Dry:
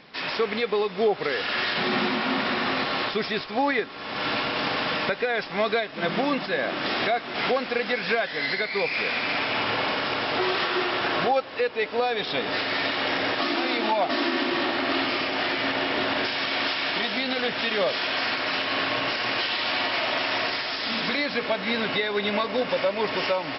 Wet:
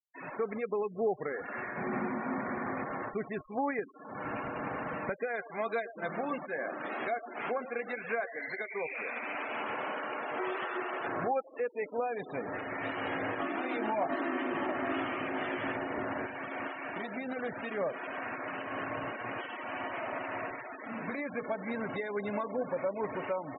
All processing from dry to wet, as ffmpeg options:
-filter_complex "[0:a]asettb=1/sr,asplit=3[s0][s1][s2];[s0]atrim=end=1.354[s3];[s1]atrim=start=1.35:end=3.31,asetpts=PTS-STARTPTS,afade=t=in:d=0.004:c=qsin,afade=t=out:st=1.956:d=0.004:c=qsin,lowpass=f=2800:w=0.5412,lowpass=f=2800:w=1.3066,bandreject=f=1300:w=27[s4];[s2]atrim=start=3.306[s5];[s3][s4]acrossfade=d=0.004:c1=hsin:c2=qsin[s6];[s6][s5]acrossfade=d=0.004:c1=qsin:c2=hsin,asettb=1/sr,asplit=3[s7][s8][s9];[s7]atrim=end=5.274[s10];[s8]atrim=start=5.27:end=11.07,asetpts=PTS-STARTPTS,afade=t=in:d=0.004:c=qsin,afade=t=out:st=5.796:d=0.004:c=qsin,aemphasis=mode=production:type=bsi,asplit=2[s11][s12];[s12]adelay=13,volume=0.282[s13];[s11][s13]amix=inputs=2:normalize=0,atrim=end_sample=255780,asplit=2[s14][s15];[s15]adelay=113,lowpass=f=1400:p=1,volume=0.211,asplit=2[s16][s17];[s17]adelay=113,lowpass=f=1400:p=1,volume=0.17[s18];[s14][s16][s18]amix=inputs=3:normalize=0,atrim=end_sample=255780[s19];[s9]atrim=start=11.066[s20];[s10][s19]acrossfade=d=0.004:c1=hsin:c2=qsin[s21];[s21][s20]acrossfade=d=0.004:c1=qsin:c2=hsin,asettb=1/sr,asplit=3[s22][s23][s24];[s22]atrim=end=12.814[s25];[s23]atrim=start=12.81:end=15.77,asetpts=PTS-STARTPTS,afade=t=in:d=0.004:c=qsin,afade=t=out:st=2.956:d=0.004:c=qsin,highshelf=f=4100:g=8,asplit=2[s26][s27];[s27]adelay=19,volume=0.422[s28];[s26][s28]amix=inputs=2:normalize=0,atrim=end_sample=130536,aecho=1:1:722:0.316,atrim=end_sample=130536[s29];[s24]atrim=start=15.766[s30];[s25][s29]acrossfade=d=0.004:c1=hsin:c2=qsin[s31];[s31][s30]acrossfade=d=0.004:c1=qsin:c2=hsin,lowpass=1800,lowshelf=f=110:g=8,afftfilt=real='re*gte(hypot(re,im),0.0398)':imag='im*gte(hypot(re,im),0.0398)':win_size=1024:overlap=0.75,volume=0.376"

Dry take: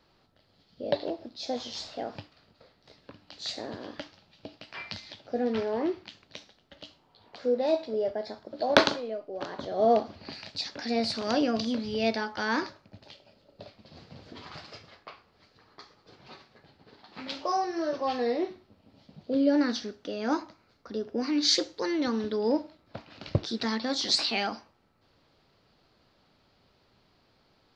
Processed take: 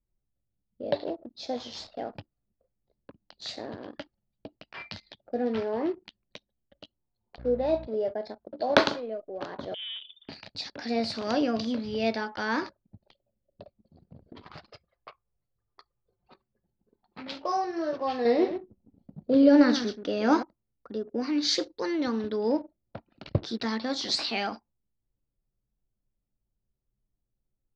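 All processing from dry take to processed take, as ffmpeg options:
-filter_complex "[0:a]asettb=1/sr,asplit=3[s0][s1][s2];[s0]atrim=end=7.384[s3];[s1]atrim=start=7.38:end=7.87,asetpts=PTS-STARTPTS,afade=t=in:d=0.004:c=qsin,afade=t=out:st=0.486:d=0.004:c=qsin,lowpass=f=3000:p=1,aeval=exprs='val(0)+0.00794*(sin(2*PI*60*n/s)+sin(2*PI*2*60*n/s)/2+sin(2*PI*3*60*n/s)/3+sin(2*PI*4*60*n/s)/4+sin(2*PI*5*60*n/s)/5)':c=same[s4];[s2]atrim=start=7.866[s5];[s3][s4]acrossfade=d=0.004:c1=hsin:c2=qsin[s6];[s6][s5]acrossfade=d=0.004:c1=qsin:c2=hsin,asettb=1/sr,asplit=3[s7][s8][s9];[s7]atrim=end=9.744[s10];[s8]atrim=start=9.74:end=10.29,asetpts=PTS-STARTPTS,afade=t=in:d=0.004:c=qsin,afade=t=out:st=0.546:d=0.004:c=qsin,acompressor=threshold=0.0158:ratio=3:attack=3.2:release=140:knee=1:detection=peak,aeval=exprs='clip(val(0),-1,0.0133)':c=same,lowpass=f=3100:t=q:w=0.5098,lowpass=f=3100:t=q:w=0.6013,lowpass=f=3100:t=q:w=0.9,lowpass=f=3100:t=q:w=2.563,afreqshift=-3700[s11];[s9]atrim=start=10.286[s12];[s10][s11]acrossfade=d=0.004:c1=hsin:c2=qsin[s13];[s13][s12]acrossfade=d=0.004:c1=qsin:c2=hsin,asettb=1/sr,asplit=3[s14][s15][s16];[s14]atrim=end=14.734[s17];[s15]atrim=start=14.73:end=16.32,asetpts=PTS-STARTPTS,afade=t=in:d=0.004:c=qsin,afade=t=out:st=1.586:d=0.004:c=qsin,equalizer=f=240:t=o:w=0.61:g=-13,acompressor=mode=upward:threshold=0.00141:ratio=2.5:attack=3.2:release=140:knee=2.83:detection=peak[s18];[s16]atrim=start=16.316[s19];[s17][s18]acrossfade=d=0.004:c1=hsin:c2=qsin[s20];[s20][s19]acrossfade=d=0.004:c1=qsin:c2=hsin,asettb=1/sr,asplit=3[s21][s22][s23];[s21]atrim=end=18.254[s24];[s22]atrim=start=18.25:end=20.43,asetpts=PTS-STARTPTS,afade=t=in:d=0.004:c=qsin,afade=t=out:st=2.176:d=0.004:c=qsin,aecho=1:1:128:0.299,atrim=end_sample=96138,acontrast=44[s25];[s23]atrim=start=20.426[s26];[s24][s25]acrossfade=d=0.004:c1=hsin:c2=qsin[s27];[s27][s26]acrossfade=d=0.004:c1=qsin:c2=hsin,anlmdn=0.1,highshelf=f=4300:g=-5.5"

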